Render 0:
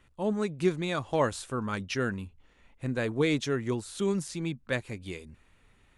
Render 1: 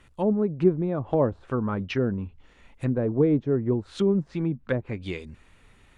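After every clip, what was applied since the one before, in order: low-pass that closes with the level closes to 590 Hz, closed at -27 dBFS; trim +6.5 dB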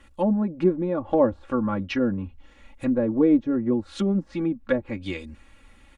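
comb 3.6 ms, depth 88%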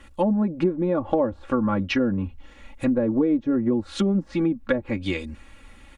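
compression 6:1, threshold -23 dBFS, peak gain reduction 9.5 dB; trim +5 dB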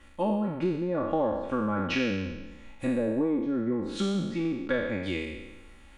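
spectral sustain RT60 1.14 s; trim -7.5 dB

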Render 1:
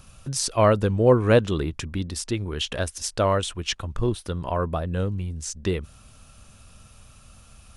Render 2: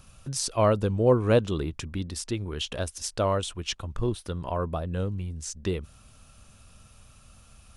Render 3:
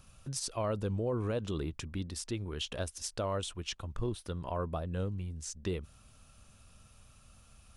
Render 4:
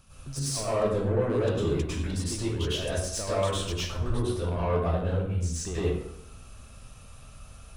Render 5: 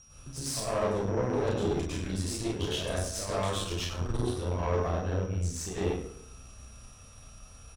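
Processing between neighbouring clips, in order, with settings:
dynamic bell 1.8 kHz, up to -5 dB, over -42 dBFS, Q 2.1; trim -3.5 dB
peak limiter -19.5 dBFS, peak gain reduction 10 dB; trim -5.5 dB
saturation -31.5 dBFS, distortion -13 dB; plate-style reverb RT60 0.82 s, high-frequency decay 0.6×, pre-delay 90 ms, DRR -10 dB
whistle 5.7 kHz -49 dBFS; early reflections 32 ms -4 dB, 47 ms -8.5 dB; valve stage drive 21 dB, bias 0.75

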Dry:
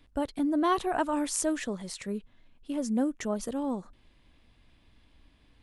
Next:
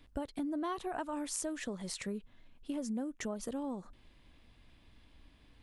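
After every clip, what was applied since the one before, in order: compression 6:1, threshold -35 dBFS, peak gain reduction 13 dB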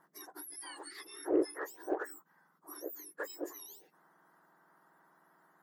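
spectrum inverted on a logarithmic axis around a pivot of 1.8 kHz; resonant high shelf 2.1 kHz -7 dB, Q 3; Chebyshev shaper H 7 -33 dB, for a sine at -20 dBFS; trim +3 dB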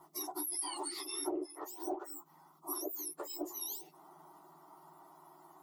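compression 8:1, threshold -45 dBFS, peak gain reduction 20 dB; chorus voices 6, 0.99 Hz, delay 11 ms, depth 3 ms; static phaser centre 330 Hz, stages 8; trim +14.5 dB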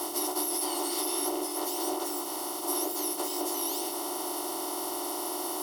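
spectral levelling over time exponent 0.2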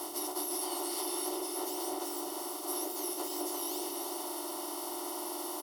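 delay 348 ms -6 dB; trim -6 dB

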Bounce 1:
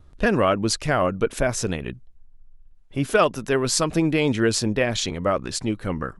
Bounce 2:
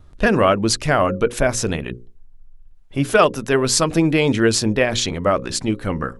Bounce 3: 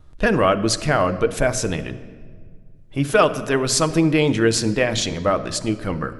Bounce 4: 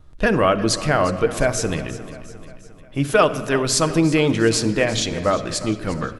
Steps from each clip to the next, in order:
hum notches 60/120/180/240/300/360/420/480/540 Hz; trim +4.5 dB
simulated room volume 2700 m³, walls mixed, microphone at 0.55 m; trim -2 dB
feedback delay 353 ms, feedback 53%, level -16 dB

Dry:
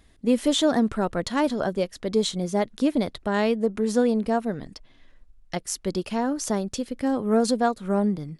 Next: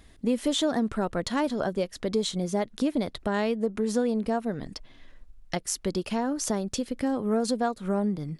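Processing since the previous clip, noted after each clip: compression 2:1, threshold -32 dBFS, peak gain reduction 9.5 dB; trim +3.5 dB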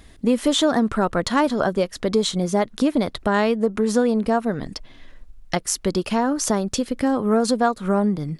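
dynamic bell 1.2 kHz, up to +5 dB, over -45 dBFS, Q 1.6; trim +6.5 dB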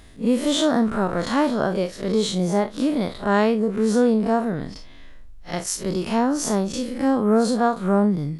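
spectral blur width 90 ms; trim +2 dB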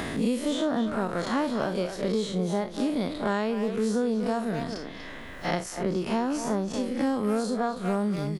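speakerphone echo 240 ms, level -9 dB; three bands compressed up and down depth 100%; trim -7.5 dB

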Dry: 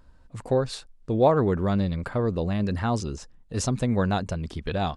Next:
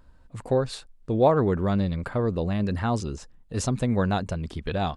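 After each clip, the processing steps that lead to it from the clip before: peaking EQ 5.6 kHz -3 dB 0.6 oct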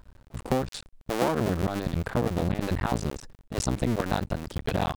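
cycle switcher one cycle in 2, muted; compression 6:1, threshold -25 dBFS, peak gain reduction 10 dB; trim +4 dB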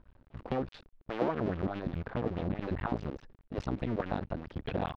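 distance through air 280 m; sweeping bell 4.8 Hz 250–3300 Hz +9 dB; trim -8 dB

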